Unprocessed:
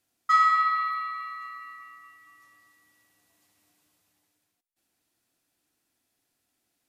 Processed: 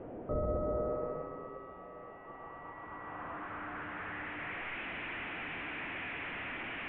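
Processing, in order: one-bit delta coder 16 kbps, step -40 dBFS; low-pass sweep 520 Hz -> 2.3 kHz, 1.37–4.78 s; trim +2.5 dB

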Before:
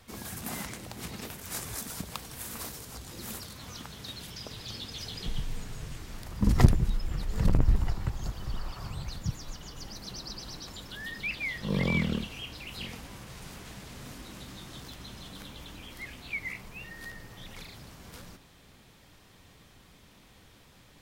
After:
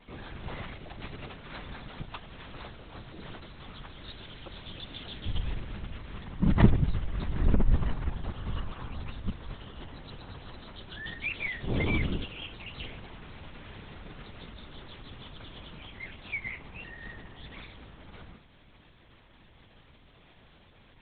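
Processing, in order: LPC vocoder at 8 kHz whisper

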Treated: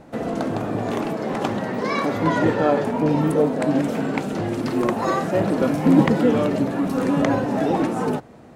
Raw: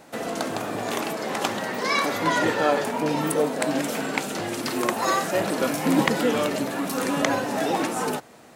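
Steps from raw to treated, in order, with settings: tilt EQ -3.5 dB/octave

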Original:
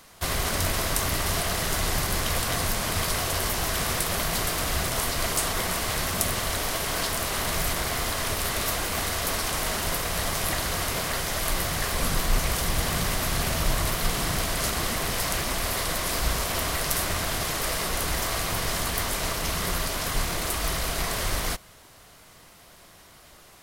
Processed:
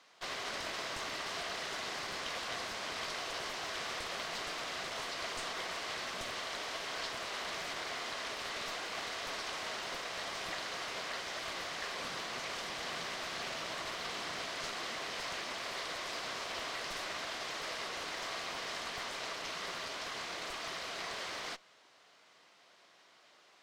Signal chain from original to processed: high-pass 340 Hz 12 dB/octave; treble shelf 2.4 kHz +9 dB; valve stage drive 14 dB, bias 0.45; distance through air 160 m; trim -9 dB

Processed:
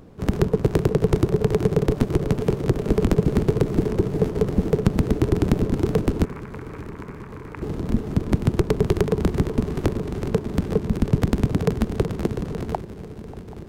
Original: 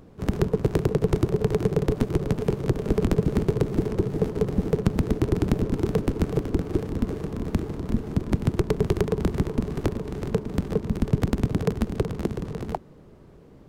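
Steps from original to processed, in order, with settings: 6.25–7.62 s: elliptic band-pass 920–2400 Hz; shuffle delay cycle 784 ms, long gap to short 3:1, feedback 78%, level -20 dB; trim +3 dB

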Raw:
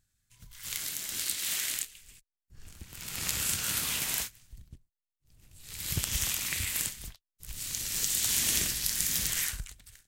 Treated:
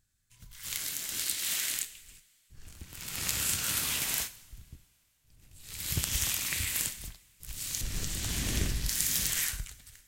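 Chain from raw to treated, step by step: 7.81–8.89 s: tilt EQ -3 dB/octave; two-slope reverb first 0.57 s, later 3.1 s, from -19 dB, DRR 12 dB

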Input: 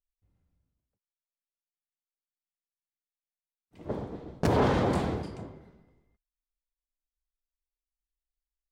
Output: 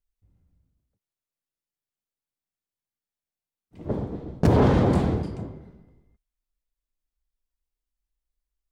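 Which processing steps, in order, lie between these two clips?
bass shelf 430 Hz +9.5 dB

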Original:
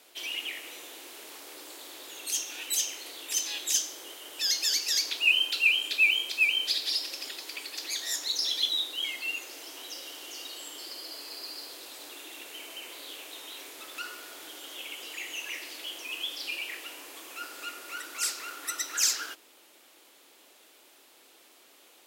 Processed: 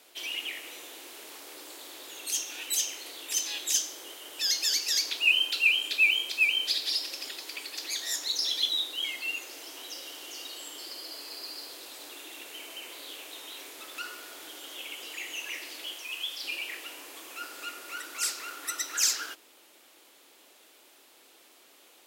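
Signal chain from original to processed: 15.94–16.44 s: bass shelf 430 Hz -11 dB

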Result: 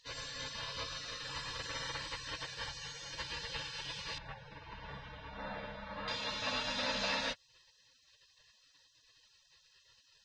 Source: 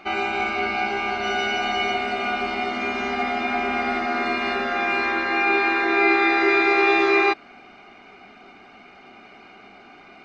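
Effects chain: spectral gate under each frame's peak -25 dB weak; 4.18–6.08 s: low-pass 1.6 kHz 12 dB/octave; trim +2.5 dB

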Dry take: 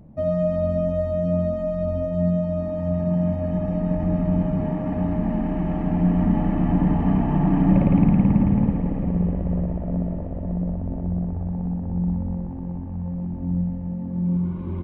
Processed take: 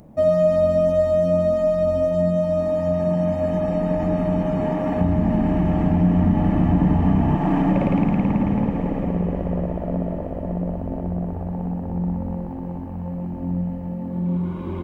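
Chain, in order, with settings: 5.01–7.36 s: peaking EQ 88 Hz +15 dB 2.1 oct; compression 2:1, threshold -18 dBFS, peak gain reduction 7 dB; tone controls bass -10 dB, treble +10 dB; trim +7.5 dB

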